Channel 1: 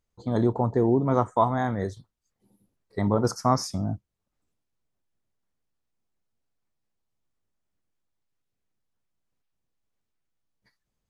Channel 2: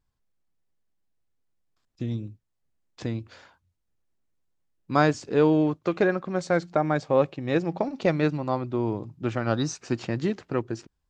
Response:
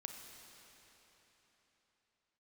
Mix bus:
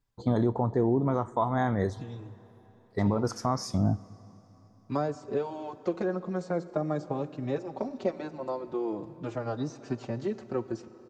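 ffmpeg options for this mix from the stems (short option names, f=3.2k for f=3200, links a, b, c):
-filter_complex "[0:a]alimiter=limit=-19dB:level=0:latency=1:release=317,highshelf=f=9.5k:g=-11.5,agate=range=-11dB:threshold=-57dB:ratio=16:detection=peak,volume=2.5dB,asplit=3[a][b][c];[b]volume=-11.5dB[d];[1:a]acrossover=split=370|1100|5000[e][f][g][h];[e]acompressor=threshold=-35dB:ratio=4[i];[f]acompressor=threshold=-29dB:ratio=4[j];[g]acompressor=threshold=-55dB:ratio=4[k];[h]acompressor=threshold=-59dB:ratio=4[l];[i][j][k][l]amix=inputs=4:normalize=0,asplit=2[m][n];[n]adelay=4.6,afreqshift=-0.41[o];[m][o]amix=inputs=2:normalize=1,volume=-0.5dB,asplit=2[p][q];[q]volume=-3.5dB[r];[c]apad=whole_len=489523[s];[p][s]sidechaincompress=threshold=-32dB:ratio=8:attack=16:release=655[t];[2:a]atrim=start_sample=2205[u];[d][r]amix=inputs=2:normalize=0[v];[v][u]afir=irnorm=-1:irlink=0[w];[a][t][w]amix=inputs=3:normalize=0"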